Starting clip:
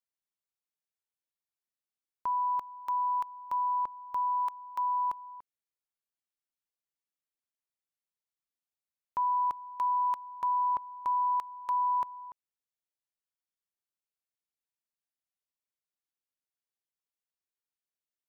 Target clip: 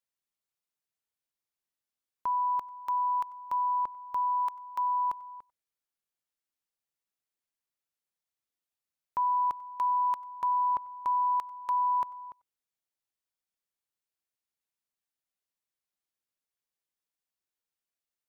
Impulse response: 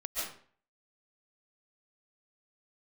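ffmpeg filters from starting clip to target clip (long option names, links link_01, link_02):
-filter_complex "[1:a]atrim=start_sample=2205,afade=type=out:start_time=0.15:duration=0.01,atrim=end_sample=7056,asetrate=48510,aresample=44100[link_01];[0:a][link_01]afir=irnorm=-1:irlink=0,volume=6dB"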